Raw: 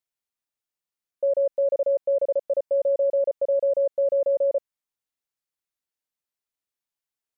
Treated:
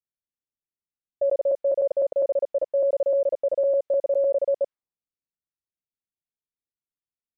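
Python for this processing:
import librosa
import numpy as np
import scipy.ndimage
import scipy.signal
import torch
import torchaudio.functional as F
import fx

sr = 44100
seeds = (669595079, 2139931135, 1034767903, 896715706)

y = fx.local_reverse(x, sr, ms=101.0)
y = fx.env_lowpass(y, sr, base_hz=310.0, full_db=-19.0)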